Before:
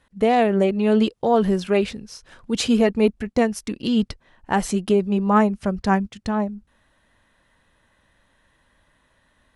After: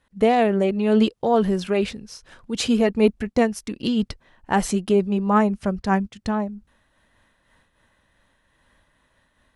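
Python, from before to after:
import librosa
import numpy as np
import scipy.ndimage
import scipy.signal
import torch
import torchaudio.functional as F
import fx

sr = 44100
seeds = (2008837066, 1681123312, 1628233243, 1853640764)

y = fx.am_noise(x, sr, seeds[0], hz=5.7, depth_pct=65)
y = F.gain(torch.from_numpy(y), 3.0).numpy()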